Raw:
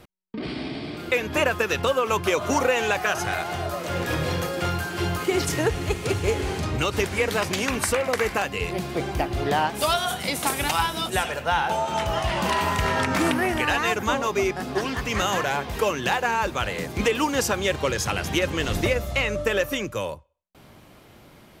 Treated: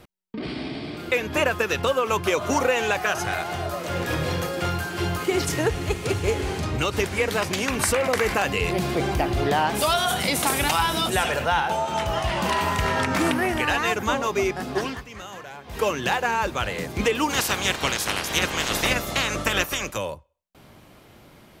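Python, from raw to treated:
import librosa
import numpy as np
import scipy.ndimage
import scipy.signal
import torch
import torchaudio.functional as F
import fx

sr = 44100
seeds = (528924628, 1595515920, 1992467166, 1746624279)

y = fx.env_flatten(x, sr, amount_pct=50, at=(7.79, 11.6))
y = fx.spec_clip(y, sr, under_db=21, at=(17.29, 19.96), fade=0.02)
y = fx.edit(y, sr, fx.fade_down_up(start_s=14.84, length_s=1.0, db=-14.5, fade_s=0.21), tone=tone)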